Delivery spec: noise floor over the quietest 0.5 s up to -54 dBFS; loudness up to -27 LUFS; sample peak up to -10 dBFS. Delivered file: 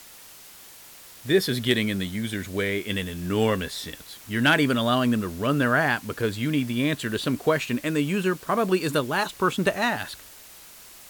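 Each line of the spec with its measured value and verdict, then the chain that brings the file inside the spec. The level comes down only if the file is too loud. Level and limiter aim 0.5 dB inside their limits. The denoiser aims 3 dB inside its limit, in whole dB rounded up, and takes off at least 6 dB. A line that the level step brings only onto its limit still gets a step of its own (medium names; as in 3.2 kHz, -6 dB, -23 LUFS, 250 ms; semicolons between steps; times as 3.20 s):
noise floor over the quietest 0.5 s -47 dBFS: fail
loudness -24.5 LUFS: fail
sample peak -8.5 dBFS: fail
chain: noise reduction 7 dB, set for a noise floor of -47 dBFS; trim -3 dB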